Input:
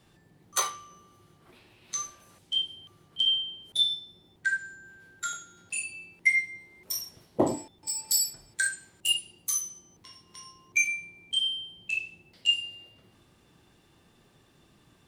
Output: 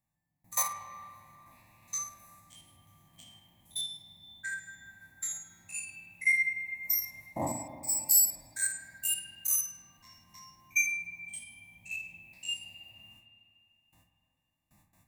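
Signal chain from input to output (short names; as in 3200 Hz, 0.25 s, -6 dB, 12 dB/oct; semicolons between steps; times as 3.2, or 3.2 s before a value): stepped spectrum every 50 ms; notch 370 Hz, Q 12; gate with hold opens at -52 dBFS; resonant high shelf 6800 Hz +12 dB, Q 3; fixed phaser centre 2100 Hz, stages 8; on a send: reverb RT60 2.7 s, pre-delay 31 ms, DRR 7 dB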